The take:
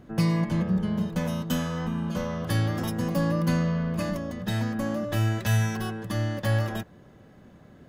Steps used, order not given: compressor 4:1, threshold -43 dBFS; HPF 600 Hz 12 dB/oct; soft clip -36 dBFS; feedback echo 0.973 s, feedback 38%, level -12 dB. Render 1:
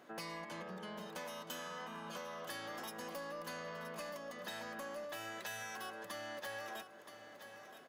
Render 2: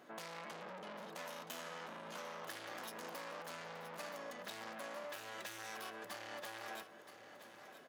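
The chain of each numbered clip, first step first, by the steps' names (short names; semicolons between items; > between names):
HPF > compressor > feedback echo > soft clip; soft clip > HPF > compressor > feedback echo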